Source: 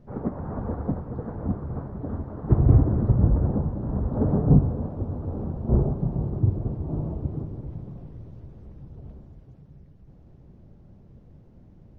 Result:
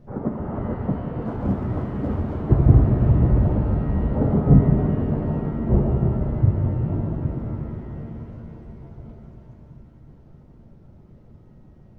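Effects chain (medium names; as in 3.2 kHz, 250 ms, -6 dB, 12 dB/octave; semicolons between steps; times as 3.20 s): reverb removal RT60 1.7 s; 1.22–2.37 s: waveshaping leveller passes 1; pitch-shifted reverb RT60 3.7 s, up +7 st, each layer -8 dB, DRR -0.5 dB; trim +2.5 dB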